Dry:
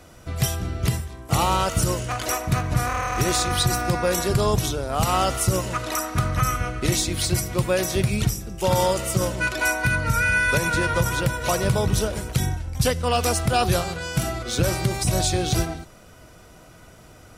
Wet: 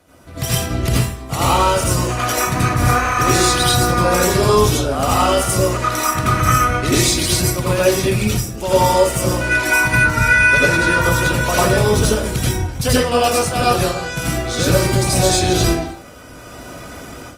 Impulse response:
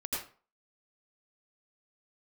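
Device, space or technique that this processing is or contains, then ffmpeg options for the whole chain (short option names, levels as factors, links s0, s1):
far-field microphone of a smart speaker: -filter_complex "[0:a]asettb=1/sr,asplit=3[s0][s1][s2];[s0]atrim=end=10.064[s3];[s1]atrim=start=10.06:end=10.78,asetpts=PTS-STARTPTS,afade=t=in:d=0.004:c=qsin,afade=t=out:st=0.716:d=0.004:c=qsin,acrossover=split=7200[s4][s5];[s5]acompressor=threshold=0.01:ratio=4:attack=1:release=60[s6];[s4][s6]amix=inputs=2:normalize=0[s7];[s2]atrim=start=10.776[s8];[s3][s7]acrossfade=d=0.004:c1=hsin:c2=qsin[s9];[s9][s8]acrossfade=d=0.004:c1=qsin:c2=hsin[s10];[1:a]atrim=start_sample=2205[s11];[s10][s11]afir=irnorm=-1:irlink=0,highpass=f=110:p=1,dynaudnorm=f=320:g=3:m=5.01,volume=0.841" -ar 48000 -c:a libopus -b:a 32k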